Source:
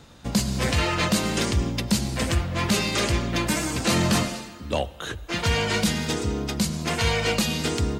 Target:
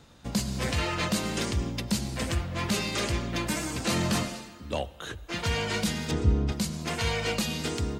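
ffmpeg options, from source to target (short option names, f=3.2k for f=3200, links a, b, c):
-filter_complex "[0:a]asettb=1/sr,asplit=3[a][b][c];[a]atrim=end=6.114[d];[b]atrim=start=6.11:end=6.52,asetpts=PTS-STARTPTS,afade=t=in:d=0.004:c=qsin,afade=t=out:st=0.406:d=0.004:c=qsin,aemphasis=mode=reproduction:type=bsi[e];[c]atrim=start=6.516[f];[d][e]acrossfade=d=0.004:c1=hsin:c2=qsin[g];[g][f]acrossfade=d=0.004:c1=qsin:c2=hsin,volume=-5.5dB"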